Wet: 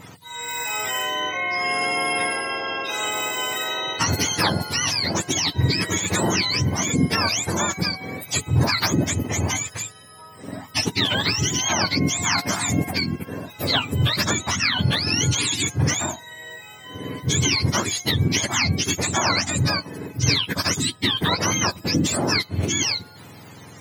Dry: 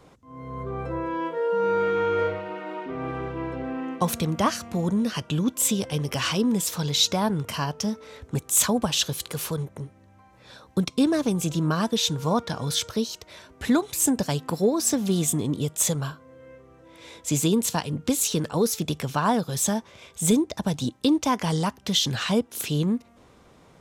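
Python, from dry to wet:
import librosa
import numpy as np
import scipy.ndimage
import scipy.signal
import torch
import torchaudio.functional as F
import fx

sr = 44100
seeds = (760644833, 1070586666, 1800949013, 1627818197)

y = fx.octave_mirror(x, sr, pivot_hz=1000.0)
y = fx.spectral_comp(y, sr, ratio=2.0)
y = y * librosa.db_to_amplitude(-7.0)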